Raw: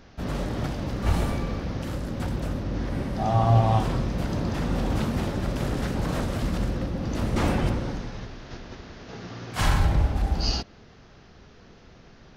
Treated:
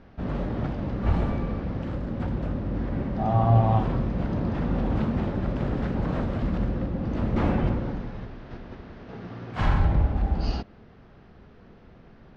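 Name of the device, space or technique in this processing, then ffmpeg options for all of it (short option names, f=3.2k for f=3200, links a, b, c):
phone in a pocket: -af "lowpass=3.5k,equalizer=f=210:t=o:w=0.42:g=2.5,highshelf=f=2.2k:g=-9"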